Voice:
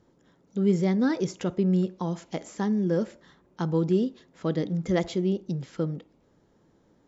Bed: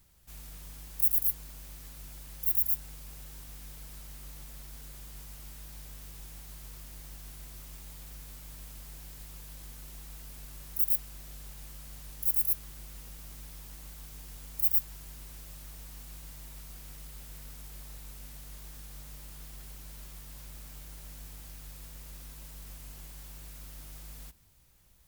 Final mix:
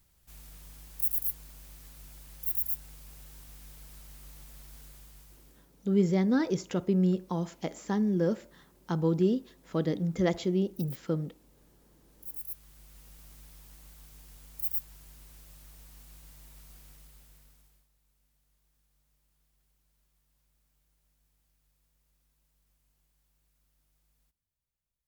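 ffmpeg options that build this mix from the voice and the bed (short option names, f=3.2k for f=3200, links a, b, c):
-filter_complex "[0:a]adelay=5300,volume=-2dB[a];[1:a]volume=9.5dB,afade=t=out:st=4.8:d=0.89:silence=0.16788,afade=t=in:st=12.05:d=1.14:silence=0.223872,afade=t=out:st=16.76:d=1.12:silence=0.0891251[b];[a][b]amix=inputs=2:normalize=0"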